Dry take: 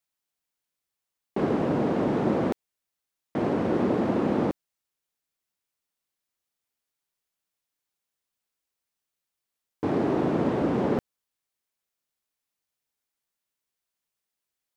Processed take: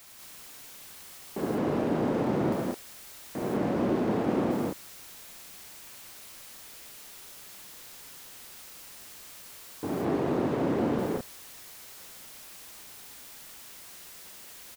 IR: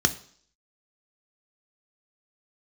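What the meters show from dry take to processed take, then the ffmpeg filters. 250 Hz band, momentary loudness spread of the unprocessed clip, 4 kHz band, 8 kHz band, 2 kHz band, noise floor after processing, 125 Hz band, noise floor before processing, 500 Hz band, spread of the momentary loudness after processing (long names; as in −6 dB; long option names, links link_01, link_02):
−2.5 dB, 7 LU, +4.5 dB, can't be measured, −1.0 dB, −48 dBFS, −2.5 dB, below −85 dBFS, −2.5 dB, 17 LU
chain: -af "aeval=exprs='val(0)+0.5*0.0141*sgn(val(0))':channel_layout=same,aecho=1:1:69.97|186.6|218.7:0.708|1|0.708,volume=-8dB"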